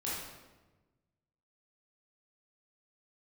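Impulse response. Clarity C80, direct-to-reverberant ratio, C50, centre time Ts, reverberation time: 2.5 dB, −8.0 dB, −1.0 dB, 80 ms, 1.2 s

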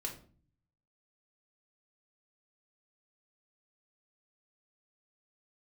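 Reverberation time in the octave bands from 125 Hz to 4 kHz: 1.0, 0.75, 0.45, 0.40, 0.35, 0.30 seconds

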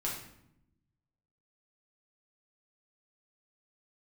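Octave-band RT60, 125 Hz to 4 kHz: 1.6, 1.3, 0.85, 0.70, 0.65, 0.55 seconds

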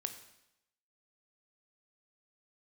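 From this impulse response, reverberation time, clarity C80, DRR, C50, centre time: 0.85 s, 12.0 dB, 7.0 dB, 10.5 dB, 12 ms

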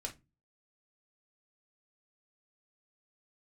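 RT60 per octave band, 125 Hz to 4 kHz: 0.50, 0.45, 0.25, 0.20, 0.20, 0.15 seconds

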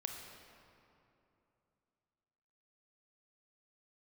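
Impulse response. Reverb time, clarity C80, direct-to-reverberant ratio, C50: 2.9 s, 4.5 dB, 2.5 dB, 3.5 dB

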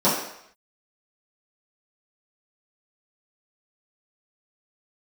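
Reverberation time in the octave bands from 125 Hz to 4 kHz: 0.55, 0.55, 0.70, 0.75, 0.75, 0.70 seconds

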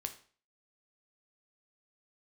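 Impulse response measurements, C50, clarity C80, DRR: 12.5 dB, 17.0 dB, 6.0 dB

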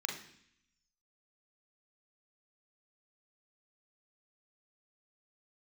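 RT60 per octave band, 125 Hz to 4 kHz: 0.95, 0.90, 0.65, 0.70, 0.85, 0.85 seconds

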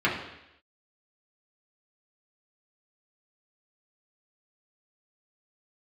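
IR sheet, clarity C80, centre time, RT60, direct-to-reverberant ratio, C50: 8.5 dB, 38 ms, 0.85 s, −6.5 dB, 5.5 dB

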